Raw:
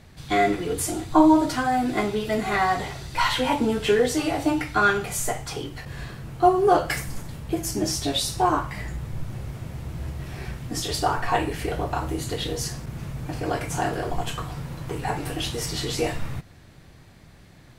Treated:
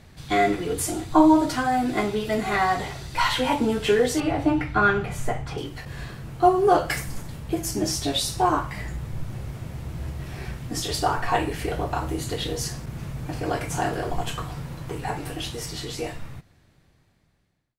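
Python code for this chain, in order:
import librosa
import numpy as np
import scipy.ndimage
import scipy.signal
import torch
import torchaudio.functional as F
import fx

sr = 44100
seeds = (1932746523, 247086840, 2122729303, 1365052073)

y = fx.fade_out_tail(x, sr, length_s=3.38)
y = fx.bass_treble(y, sr, bass_db=5, treble_db=-14, at=(4.2, 5.58))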